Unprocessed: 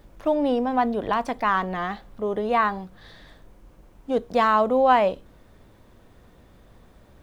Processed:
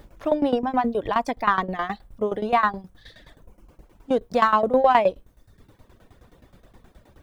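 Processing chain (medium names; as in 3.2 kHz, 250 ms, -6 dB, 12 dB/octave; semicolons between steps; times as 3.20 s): reverb removal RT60 0.81 s; in parallel at -11.5 dB: saturation -17 dBFS, distortion -13 dB; on the sum: tremolo saw down 9.5 Hz, depth 85%; trim +4 dB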